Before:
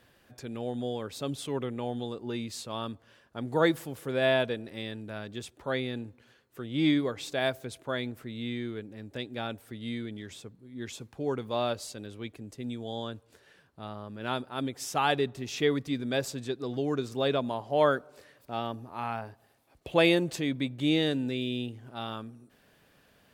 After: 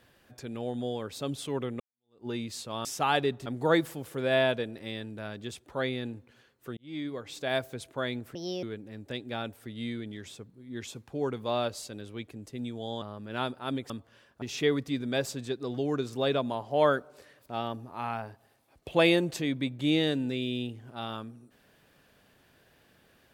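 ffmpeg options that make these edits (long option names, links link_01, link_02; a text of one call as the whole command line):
ffmpeg -i in.wav -filter_complex "[0:a]asplit=10[link_01][link_02][link_03][link_04][link_05][link_06][link_07][link_08][link_09][link_10];[link_01]atrim=end=1.8,asetpts=PTS-STARTPTS,afade=type=out:start_time=1.796:duration=0.004:curve=hsin[link_11];[link_02]atrim=start=1.8:end=2.852,asetpts=PTS-STARTPTS,afade=type=in:duration=0.46:curve=exp[link_12];[link_03]atrim=start=14.798:end=15.412[link_13];[link_04]atrim=start=3.368:end=6.68,asetpts=PTS-STARTPTS,afade=type=out:start_time=3.308:duration=0.004:curve=hsin[link_14];[link_05]atrim=start=6.68:end=8.264,asetpts=PTS-STARTPTS,afade=type=in:duration=0.85[link_15];[link_06]atrim=start=8.26:end=8.68,asetpts=PTS-STARTPTS,asetrate=66591,aresample=44100,atrim=end_sample=12266,asetpts=PTS-STARTPTS[link_16];[link_07]atrim=start=8.676:end=13.072[link_17];[link_08]atrim=start=13.918:end=14.802[link_18];[link_09]atrim=start=2.848:end=3.372[link_19];[link_10]atrim=start=15.408[link_20];[link_11][link_12]concat=n=2:v=0:a=1[link_21];[link_21][link_13]acrossfade=duration=0.004:curve1=hsin:curve2=hsin[link_22];[link_14][link_15]concat=n=2:v=0:a=1[link_23];[link_22][link_23]acrossfade=duration=0.004:curve1=hsin:curve2=hsin[link_24];[link_24][link_16]acrossfade=duration=0.004:curve1=hsin:curve2=hsin[link_25];[link_25][link_17]acrossfade=duration=0.004:curve1=hsin:curve2=hsin[link_26];[link_26][link_18]acrossfade=duration=0.004:curve1=hsin:curve2=hsin[link_27];[link_27][link_19]acrossfade=duration=0.004:curve1=hsin:curve2=hsin[link_28];[link_28][link_20]acrossfade=duration=0.004:curve1=hsin:curve2=hsin" out.wav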